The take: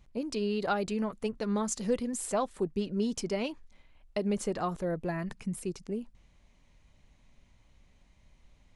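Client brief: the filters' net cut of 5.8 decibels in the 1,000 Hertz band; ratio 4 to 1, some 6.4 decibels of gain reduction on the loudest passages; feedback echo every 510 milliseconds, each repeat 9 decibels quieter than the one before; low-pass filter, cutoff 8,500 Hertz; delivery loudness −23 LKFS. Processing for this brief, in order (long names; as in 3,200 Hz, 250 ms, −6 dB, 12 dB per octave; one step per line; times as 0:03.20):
low-pass filter 8,500 Hz
parametric band 1,000 Hz −8.5 dB
downward compressor 4 to 1, threshold −33 dBFS
repeating echo 510 ms, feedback 35%, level −9 dB
level +15 dB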